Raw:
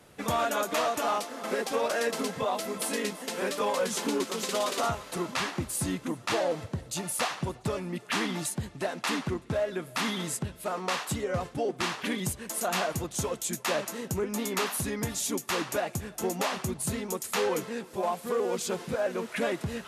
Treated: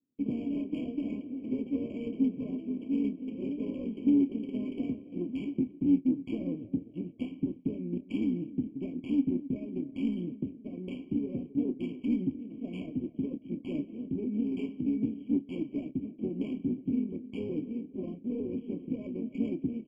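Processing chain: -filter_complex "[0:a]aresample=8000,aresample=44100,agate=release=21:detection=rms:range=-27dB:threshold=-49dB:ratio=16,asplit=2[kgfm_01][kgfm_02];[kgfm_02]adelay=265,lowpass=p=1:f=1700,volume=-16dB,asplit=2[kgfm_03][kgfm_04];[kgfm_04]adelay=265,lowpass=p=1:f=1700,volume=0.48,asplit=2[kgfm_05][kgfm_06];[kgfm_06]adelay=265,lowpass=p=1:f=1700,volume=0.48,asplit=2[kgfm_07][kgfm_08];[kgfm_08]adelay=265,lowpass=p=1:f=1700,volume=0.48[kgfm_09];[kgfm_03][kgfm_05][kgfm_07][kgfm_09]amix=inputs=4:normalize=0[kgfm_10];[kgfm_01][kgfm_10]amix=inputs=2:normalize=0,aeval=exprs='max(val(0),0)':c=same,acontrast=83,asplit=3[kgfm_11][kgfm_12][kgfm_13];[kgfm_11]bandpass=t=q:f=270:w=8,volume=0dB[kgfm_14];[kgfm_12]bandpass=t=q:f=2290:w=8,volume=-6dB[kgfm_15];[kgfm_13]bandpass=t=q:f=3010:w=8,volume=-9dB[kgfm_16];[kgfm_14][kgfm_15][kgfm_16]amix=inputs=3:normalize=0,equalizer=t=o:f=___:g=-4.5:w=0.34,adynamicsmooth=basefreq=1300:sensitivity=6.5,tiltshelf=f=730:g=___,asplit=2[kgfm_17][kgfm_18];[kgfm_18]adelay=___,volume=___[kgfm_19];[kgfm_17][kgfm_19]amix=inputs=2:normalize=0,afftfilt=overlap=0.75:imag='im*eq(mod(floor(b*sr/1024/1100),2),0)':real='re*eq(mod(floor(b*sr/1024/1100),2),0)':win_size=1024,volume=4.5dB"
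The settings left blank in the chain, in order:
2000, 8, 28, -11.5dB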